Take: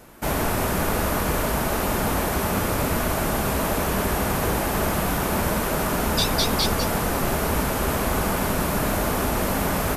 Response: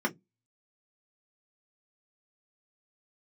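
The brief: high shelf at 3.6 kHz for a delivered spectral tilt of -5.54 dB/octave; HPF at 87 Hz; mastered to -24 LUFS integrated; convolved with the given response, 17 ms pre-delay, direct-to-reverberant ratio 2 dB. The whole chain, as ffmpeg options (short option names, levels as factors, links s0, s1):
-filter_complex "[0:a]highpass=87,highshelf=f=3600:g=-7.5,asplit=2[s0][s1];[1:a]atrim=start_sample=2205,adelay=17[s2];[s1][s2]afir=irnorm=-1:irlink=0,volume=0.282[s3];[s0][s3]amix=inputs=2:normalize=0,volume=0.794"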